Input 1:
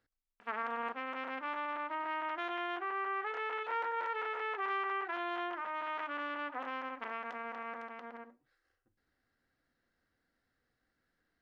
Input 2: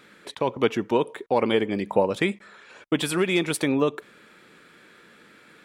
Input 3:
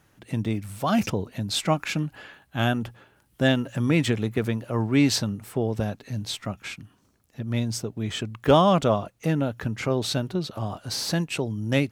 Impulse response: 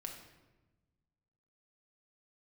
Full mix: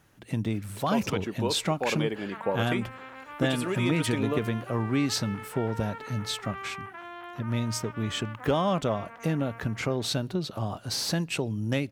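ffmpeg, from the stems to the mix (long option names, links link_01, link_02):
-filter_complex "[0:a]adelay=1850,volume=-4.5dB[link_01];[1:a]adelay=500,volume=-8dB[link_02];[2:a]acompressor=threshold=-23dB:ratio=3,volume=-1dB,asplit=2[link_03][link_04];[link_04]volume=-23.5dB[link_05];[3:a]atrim=start_sample=2205[link_06];[link_05][link_06]afir=irnorm=-1:irlink=0[link_07];[link_01][link_02][link_03][link_07]amix=inputs=4:normalize=0"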